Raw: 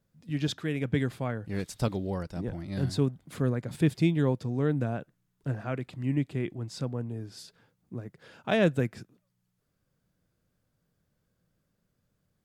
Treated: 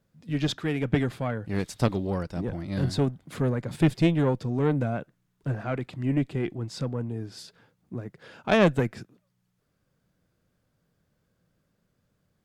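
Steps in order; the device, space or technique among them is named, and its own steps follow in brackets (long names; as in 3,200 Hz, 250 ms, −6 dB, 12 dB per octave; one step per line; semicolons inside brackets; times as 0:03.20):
tube preamp driven hard (tube saturation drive 17 dB, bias 0.65; low-shelf EQ 170 Hz −3 dB; high-shelf EQ 6,200 Hz −6 dB)
level +8.5 dB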